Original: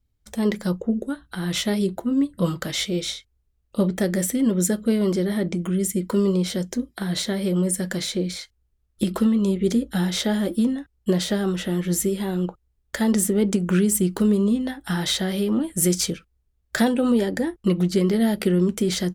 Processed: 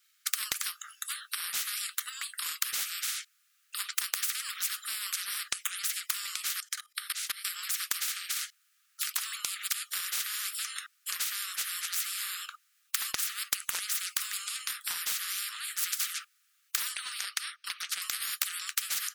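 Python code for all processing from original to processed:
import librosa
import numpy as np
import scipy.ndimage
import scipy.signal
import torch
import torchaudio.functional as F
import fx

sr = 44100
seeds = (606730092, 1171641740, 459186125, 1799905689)

y = fx.chain(x, sr, fx.highpass(hz=62.0, slope=12),
    fx.level_steps(step_db=23), at=(6.6, 7.59))
y = fx.chain(y, sr, fx.savgol(points=15),
    fx.high_shelf(hz=2300.0, db=2.5), at=(16.96, 18.02))
y = scipy.signal.sosfilt(scipy.signal.cheby1(10, 1.0, 1200.0, 'highpass', fs=sr, output='sos'), y)
y = fx.transient(y, sr, attack_db=6, sustain_db=1)
y = fx.spectral_comp(y, sr, ratio=10.0)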